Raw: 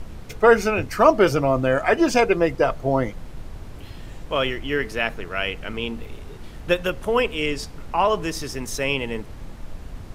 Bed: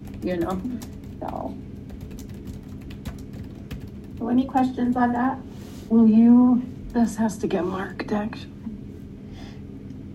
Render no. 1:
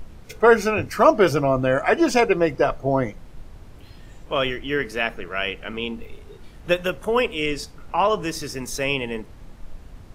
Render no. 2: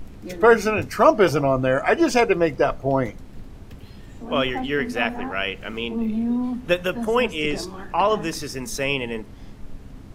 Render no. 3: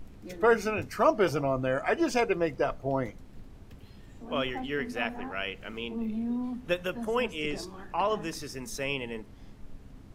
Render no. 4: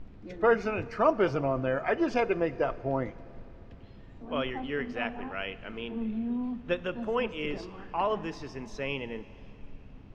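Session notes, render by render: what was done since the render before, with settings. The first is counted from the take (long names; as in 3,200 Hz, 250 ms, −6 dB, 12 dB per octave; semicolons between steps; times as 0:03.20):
noise reduction from a noise print 6 dB
mix in bed −9 dB
level −8.5 dB
high-frequency loss of the air 190 metres; four-comb reverb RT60 3.6 s, combs from 25 ms, DRR 17.5 dB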